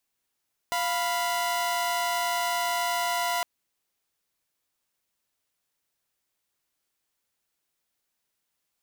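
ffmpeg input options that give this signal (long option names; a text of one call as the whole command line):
ffmpeg -f lavfi -i "aevalsrc='0.0531*((2*mod(698.46*t,1)-1)+(2*mod(987.77*t,1)-1))':duration=2.71:sample_rate=44100" out.wav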